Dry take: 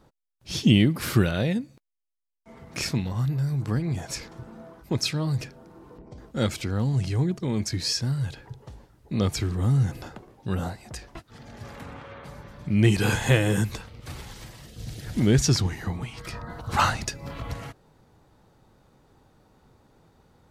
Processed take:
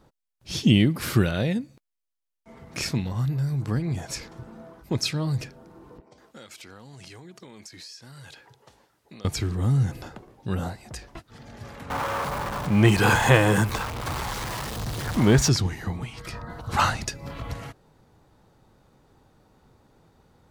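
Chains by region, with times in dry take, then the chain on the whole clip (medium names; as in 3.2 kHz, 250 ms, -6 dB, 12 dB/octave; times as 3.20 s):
6.00–9.25 s: high-pass 860 Hz 6 dB/octave + compression 12:1, threshold -40 dBFS
11.90–15.49 s: jump at every zero crossing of -30.5 dBFS + peaking EQ 1 kHz +11 dB 1.4 oct
whole clip: none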